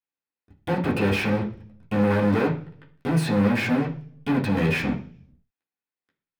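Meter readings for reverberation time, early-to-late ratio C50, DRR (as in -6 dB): 0.45 s, 11.0 dB, -4.0 dB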